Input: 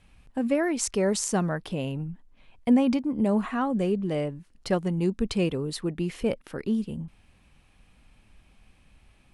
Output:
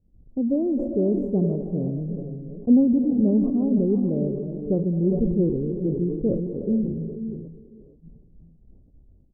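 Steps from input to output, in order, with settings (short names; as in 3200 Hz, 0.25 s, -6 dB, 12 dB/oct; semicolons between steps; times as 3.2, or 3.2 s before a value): reverse delay 0.539 s, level -14 dB; gate -54 dBFS, range -10 dB; inverse Chebyshev low-pass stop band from 1600 Hz, stop band 60 dB; echo 0.405 s -19 dB; non-linear reverb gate 0.5 s rising, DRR 6.5 dB; sustainer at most 50 dB/s; gain +3.5 dB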